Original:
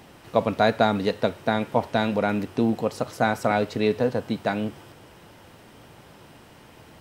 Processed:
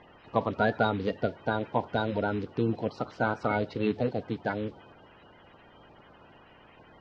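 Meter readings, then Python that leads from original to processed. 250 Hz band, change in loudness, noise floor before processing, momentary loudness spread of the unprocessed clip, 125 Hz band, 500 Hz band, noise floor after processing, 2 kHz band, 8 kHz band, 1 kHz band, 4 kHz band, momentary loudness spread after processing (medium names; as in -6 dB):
-6.0 dB, -5.5 dB, -50 dBFS, 6 LU, -3.0 dB, -6.0 dB, -56 dBFS, -4.5 dB, under -20 dB, -5.5 dB, -9.0 dB, 6 LU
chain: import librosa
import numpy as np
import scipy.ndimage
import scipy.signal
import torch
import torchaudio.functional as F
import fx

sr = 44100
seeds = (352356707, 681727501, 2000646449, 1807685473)

y = fx.spec_quant(x, sr, step_db=30)
y = scipy.signal.sosfilt(scipy.signal.butter(4, 4500.0, 'lowpass', fs=sr, output='sos'), y)
y = y * librosa.db_to_amplitude(-5.0)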